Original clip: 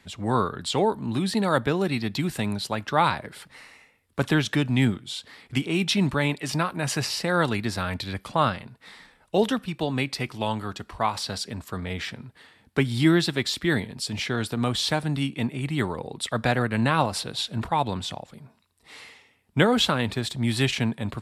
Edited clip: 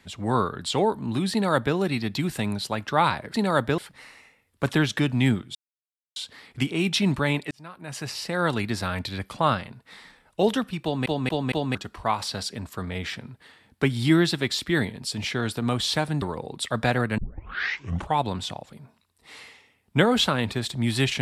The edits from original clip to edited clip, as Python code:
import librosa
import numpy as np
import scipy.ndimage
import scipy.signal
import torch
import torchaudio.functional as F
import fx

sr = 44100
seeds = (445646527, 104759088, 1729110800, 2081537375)

y = fx.edit(x, sr, fx.duplicate(start_s=1.32, length_s=0.44, to_s=3.34),
    fx.insert_silence(at_s=5.11, length_s=0.61),
    fx.fade_in_span(start_s=6.46, length_s=1.13),
    fx.stutter_over(start_s=9.78, slice_s=0.23, count=4),
    fx.cut(start_s=15.17, length_s=0.66),
    fx.tape_start(start_s=16.79, length_s=1.01), tone=tone)